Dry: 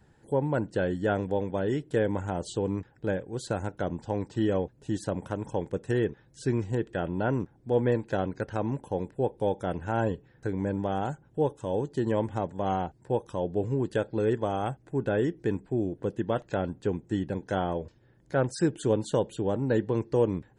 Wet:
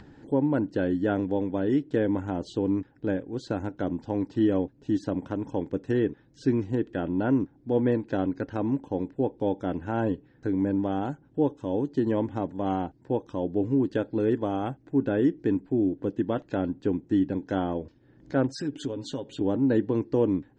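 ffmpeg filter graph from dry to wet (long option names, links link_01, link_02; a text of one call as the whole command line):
ffmpeg -i in.wav -filter_complex "[0:a]asettb=1/sr,asplit=3[link_01][link_02][link_03];[link_01]atrim=end=18.474[link_04];[link_02]atrim=start=18.47:end=19.41,asetpts=PTS-STARTPTS,afade=type=in:duration=0.004:curve=qsin,afade=type=out:start_time=0.936:duration=0.004:curve=qsin,aecho=1:1:7.4:0.5,atrim=end_sample=41454,acompressor=threshold=-33dB:ratio=3:attack=3.2:release=140:knee=1:detection=peak,adynamicequalizer=threshold=0.00158:dfrequency=2000:dqfactor=0.7:tfrequency=2000:tqfactor=0.7:attack=5:release=100:ratio=0.375:range=2.5:mode=boostabove:tftype=highshelf[link_05];[link_03]atrim=start=19.406[link_06];[link_04][link_05]acrossfade=duration=0.004:curve1=hsin:curve2=qsin[link_07];[link_07][link_06]acrossfade=duration=0.004:curve1=qsin:curve2=hsin,lowpass=frequency=5900:width=0.5412,lowpass=frequency=5900:width=1.3066,equalizer=frequency=280:width=2.9:gain=12.5,acompressor=mode=upward:threshold=-38dB:ratio=2.5,volume=-2dB" out.wav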